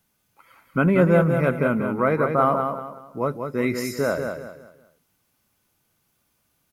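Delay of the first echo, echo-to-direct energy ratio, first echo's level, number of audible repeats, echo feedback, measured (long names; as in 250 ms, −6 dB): 188 ms, −5.5 dB, −6.0 dB, 4, 33%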